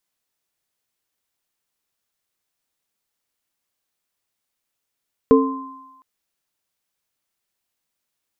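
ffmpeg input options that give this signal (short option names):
-f lavfi -i "aevalsrc='0.316*pow(10,-3*t/0.78)*sin(2*PI*269*t)+0.447*pow(10,-3*t/0.39)*sin(2*PI*447*t)+0.106*pow(10,-3*t/1.4)*sin(2*PI*1040*t)':d=0.71:s=44100"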